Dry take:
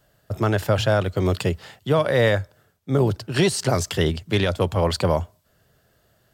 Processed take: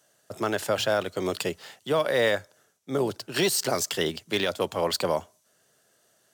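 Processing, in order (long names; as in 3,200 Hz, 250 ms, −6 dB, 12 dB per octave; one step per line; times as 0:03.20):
high-pass filter 250 Hz 12 dB per octave
high-shelf EQ 4,600 Hz +10 dB
linearly interpolated sample-rate reduction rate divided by 2×
level −4 dB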